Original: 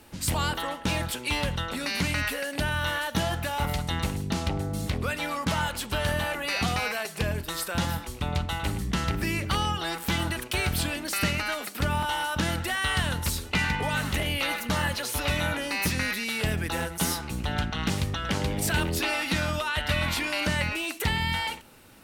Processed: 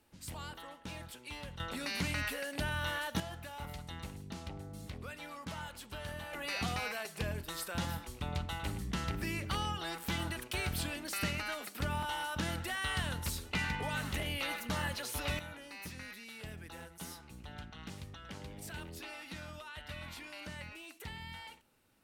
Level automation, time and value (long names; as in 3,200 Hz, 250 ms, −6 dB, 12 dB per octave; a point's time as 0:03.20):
−17.5 dB
from 0:01.60 −8 dB
from 0:03.20 −16 dB
from 0:06.33 −9 dB
from 0:15.39 −19 dB